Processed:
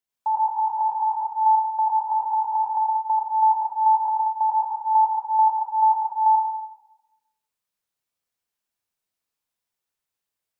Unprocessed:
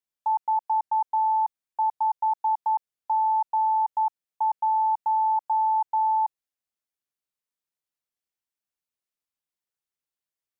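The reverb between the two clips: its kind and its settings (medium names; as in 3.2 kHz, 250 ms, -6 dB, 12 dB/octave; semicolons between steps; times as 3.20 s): plate-style reverb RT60 0.98 s, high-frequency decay 0.85×, pre-delay 75 ms, DRR -4 dB; trim +1 dB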